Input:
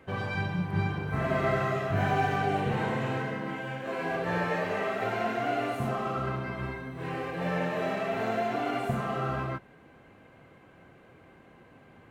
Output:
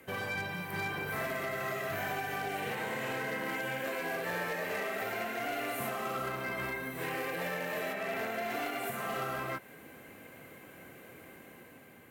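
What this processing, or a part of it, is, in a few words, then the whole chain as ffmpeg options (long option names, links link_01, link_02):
FM broadcast chain: -filter_complex "[0:a]equalizer=frequency=250:width_type=o:width=1:gain=5,equalizer=frequency=500:width_type=o:width=1:gain=5,equalizer=frequency=2000:width_type=o:width=1:gain=7,asettb=1/sr,asplit=3[link_01][link_02][link_03];[link_01]atrim=end=7.934[link_04];[link_02]atrim=start=7.93:end=8.5,asetpts=PTS-STARTPTS,afade=type=in:duration=0.004:curve=qsin,afade=type=out:start_time=0.566:duration=0.004:curve=qsin,acrossover=split=3200[link_05][link_06];[link_06]acompressor=threshold=-52dB:ratio=4:attack=1:release=60[link_07];[link_05][link_07]amix=inputs=2:normalize=0[link_08];[link_03]atrim=start=8.496[link_09];[link_04][link_08]acrossfade=duration=0.004:curve1=hsin:curve2=qsin[link_10];[link_10][link_09]acrossfade=duration=0.004:curve1=qsin:curve2=hsin,highpass=55,dynaudnorm=framelen=320:gausssize=5:maxgain=4.5dB,acrossover=split=440|1100|3900[link_11][link_12][link_13][link_14];[link_11]acompressor=threshold=-36dB:ratio=4[link_15];[link_12]acompressor=threshold=-30dB:ratio=4[link_16];[link_13]acompressor=threshold=-32dB:ratio=4[link_17];[link_14]acompressor=threshold=-58dB:ratio=4[link_18];[link_15][link_16][link_17][link_18]amix=inputs=4:normalize=0,aemphasis=mode=production:type=50fm,alimiter=limit=-19.5dB:level=0:latency=1:release=370,asoftclip=type=hard:threshold=-23.5dB,lowpass=frequency=15000:width=0.5412,lowpass=frequency=15000:width=1.3066,aemphasis=mode=production:type=50fm,volume=-6dB"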